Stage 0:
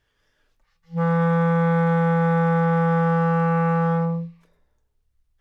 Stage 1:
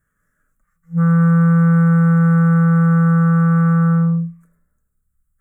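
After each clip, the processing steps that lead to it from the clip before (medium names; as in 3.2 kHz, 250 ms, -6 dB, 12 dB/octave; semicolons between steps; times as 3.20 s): FFT filter 110 Hz 0 dB, 180 Hz +10 dB, 390 Hz -8 dB, 600 Hz -5 dB, 870 Hz -15 dB, 1.3 kHz +7 dB, 2 kHz -5 dB, 2.9 kHz -23 dB, 4.7 kHz -27 dB, 7.5 kHz +8 dB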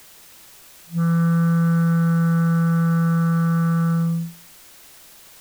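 added noise white -41 dBFS; trim -5.5 dB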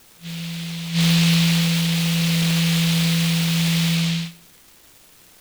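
CVSD coder 32 kbps; reverse echo 711 ms -11.5 dB; delay time shaken by noise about 3.1 kHz, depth 0.41 ms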